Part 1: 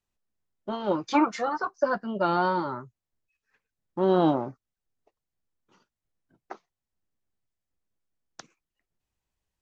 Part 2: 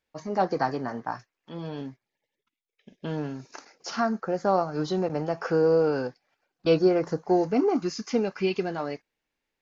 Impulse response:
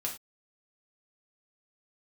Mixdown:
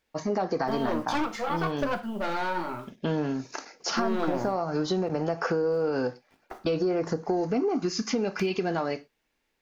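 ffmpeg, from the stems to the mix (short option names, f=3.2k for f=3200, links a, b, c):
-filter_complex "[0:a]aeval=exprs='(tanh(17.8*val(0)+0.5)-tanh(0.5))/17.8':c=same,acrusher=bits=9:mix=0:aa=0.000001,volume=0.5dB,asplit=2[a][b];[b]volume=-4.5dB[c];[1:a]acontrast=64,alimiter=limit=-14.5dB:level=0:latency=1:release=122,volume=-2dB,asplit=3[d][e][f];[e]volume=-11.5dB[g];[f]apad=whole_len=424241[h];[a][h]sidechaingate=range=-7dB:threshold=-45dB:ratio=16:detection=peak[i];[2:a]atrim=start_sample=2205[j];[c][g]amix=inputs=2:normalize=0[k];[k][j]afir=irnorm=-1:irlink=0[l];[i][d][l]amix=inputs=3:normalize=0,acompressor=threshold=-23dB:ratio=6"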